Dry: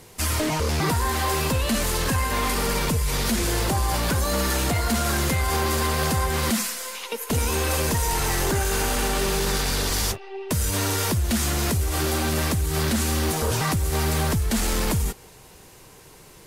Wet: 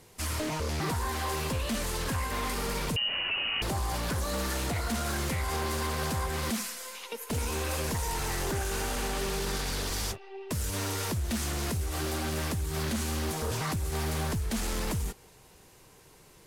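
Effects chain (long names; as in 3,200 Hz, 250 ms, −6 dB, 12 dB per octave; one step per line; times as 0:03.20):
0:02.96–0:03.62: voice inversion scrambler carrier 2,900 Hz
highs frequency-modulated by the lows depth 0.21 ms
level −8 dB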